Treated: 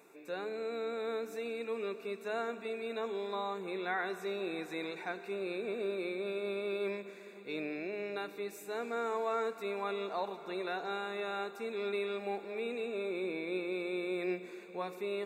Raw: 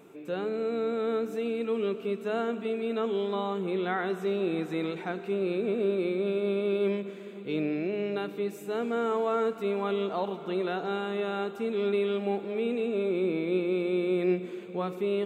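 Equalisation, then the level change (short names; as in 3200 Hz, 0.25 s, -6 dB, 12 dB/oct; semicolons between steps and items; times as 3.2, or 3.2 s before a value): HPF 1000 Hz 6 dB/oct; Butterworth band-stop 3100 Hz, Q 3.7; notch 1300 Hz, Q 11; 0.0 dB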